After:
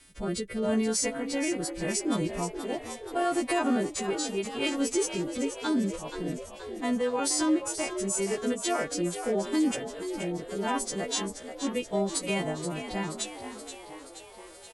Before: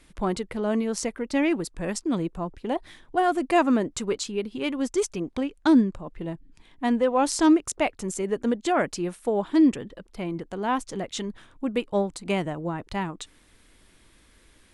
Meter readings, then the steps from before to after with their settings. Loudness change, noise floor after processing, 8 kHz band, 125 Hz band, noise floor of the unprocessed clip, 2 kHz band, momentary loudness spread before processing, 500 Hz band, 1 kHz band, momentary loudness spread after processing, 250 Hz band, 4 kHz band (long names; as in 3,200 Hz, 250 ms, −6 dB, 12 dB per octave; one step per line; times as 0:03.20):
−4.0 dB, −47 dBFS, +4.0 dB, −3.0 dB, −59 dBFS, −2.5 dB, 13 LU, −3.5 dB, −6.0 dB, 9 LU, −5.0 dB, +2.0 dB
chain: every partial snapped to a pitch grid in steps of 2 semitones
brickwall limiter −17.5 dBFS, peak gain reduction 9 dB
rotating-speaker cabinet horn 0.8 Hz
on a send: echo with shifted repeats 477 ms, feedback 62%, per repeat +56 Hz, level −10 dB